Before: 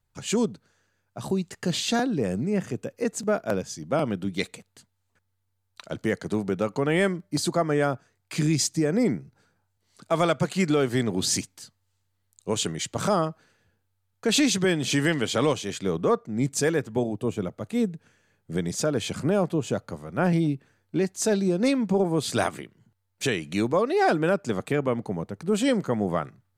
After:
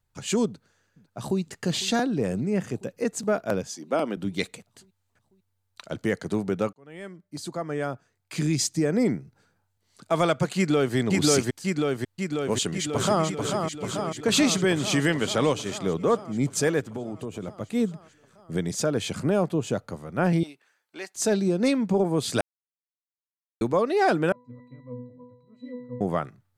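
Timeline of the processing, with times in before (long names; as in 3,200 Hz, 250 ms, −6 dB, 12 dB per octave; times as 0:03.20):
0:00.46–0:01.40: delay throw 500 ms, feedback 70%, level −17.5 dB
0:03.67–0:04.17: high-pass filter 220 Hz 24 dB per octave
0:06.73–0:08.85: fade in
0:10.56–0:10.96: delay throw 540 ms, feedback 70%, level 0 dB
0:12.50–0:13.24: delay throw 440 ms, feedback 75%, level −5 dB
0:16.80–0:17.48: downward compressor, threshold −29 dBFS
0:20.43–0:21.15: high-pass filter 860 Hz
0:22.41–0:23.61: silence
0:24.32–0:26.01: resonances in every octave B, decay 0.62 s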